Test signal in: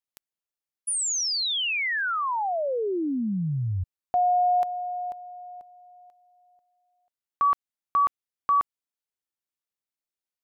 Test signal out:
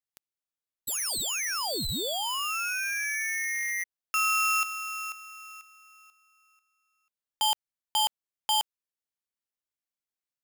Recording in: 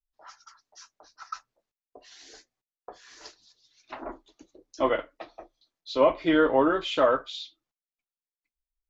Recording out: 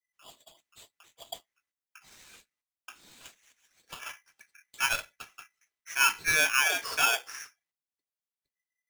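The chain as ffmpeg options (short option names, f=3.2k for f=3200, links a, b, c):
-af "aeval=exprs='val(0)*sgn(sin(2*PI*2000*n/s))':c=same,volume=-4dB"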